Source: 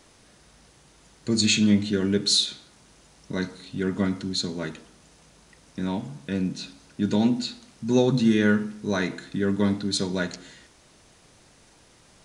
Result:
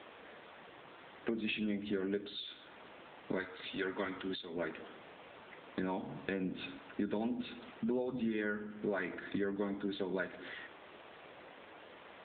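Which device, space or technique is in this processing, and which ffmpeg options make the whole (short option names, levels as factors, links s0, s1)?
voicemail: -filter_complex "[0:a]asettb=1/sr,asplit=3[s0][s1][s2];[s0]atrim=end=3.394[s3];[s1]atrim=start=3.39:end=4.53,asetpts=PTS-STARTPTS,afade=t=in:d=0.004:c=qsin,afade=t=out:st=1.136:d=0.004:c=qsin,aemphasis=mode=production:type=riaa[s4];[s2]atrim=start=4.526[s5];[s3][s4]acrossfade=d=0.004:c1=hsin:c2=qsin[s6];[s6][s5]acrossfade=d=0.004:c1=qsin:c2=hsin,highpass=360,lowpass=3100,acompressor=threshold=0.00891:ratio=8,volume=2.51" -ar 8000 -c:a libopencore_amrnb -b:a 7950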